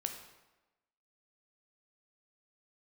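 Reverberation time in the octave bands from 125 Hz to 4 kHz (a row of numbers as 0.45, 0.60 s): 0.90, 1.1, 1.1, 1.1, 0.95, 0.80 s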